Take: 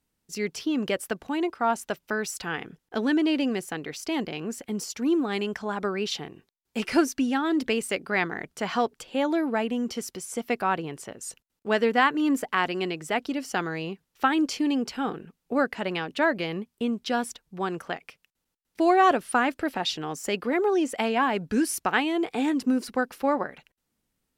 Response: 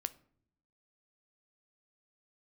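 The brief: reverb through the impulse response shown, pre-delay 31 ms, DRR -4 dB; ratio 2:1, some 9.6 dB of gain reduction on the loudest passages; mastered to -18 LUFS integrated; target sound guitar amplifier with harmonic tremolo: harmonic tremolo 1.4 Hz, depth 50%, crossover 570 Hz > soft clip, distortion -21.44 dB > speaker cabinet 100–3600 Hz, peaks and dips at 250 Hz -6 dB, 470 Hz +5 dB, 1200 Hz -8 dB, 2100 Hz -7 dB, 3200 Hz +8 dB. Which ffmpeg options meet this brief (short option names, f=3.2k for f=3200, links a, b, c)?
-filter_complex "[0:a]acompressor=threshold=-33dB:ratio=2,asplit=2[a][b];[1:a]atrim=start_sample=2205,adelay=31[c];[b][c]afir=irnorm=-1:irlink=0,volume=5dB[d];[a][d]amix=inputs=2:normalize=0,acrossover=split=570[e][f];[e]aeval=exprs='val(0)*(1-0.5/2+0.5/2*cos(2*PI*1.4*n/s))':c=same[g];[f]aeval=exprs='val(0)*(1-0.5/2-0.5/2*cos(2*PI*1.4*n/s))':c=same[h];[g][h]amix=inputs=2:normalize=0,asoftclip=threshold=-18dB,highpass=100,equalizer=f=250:t=q:w=4:g=-6,equalizer=f=470:t=q:w=4:g=5,equalizer=f=1.2k:t=q:w=4:g=-8,equalizer=f=2.1k:t=q:w=4:g=-7,equalizer=f=3.2k:t=q:w=4:g=8,lowpass=f=3.6k:w=0.5412,lowpass=f=3.6k:w=1.3066,volume=14dB"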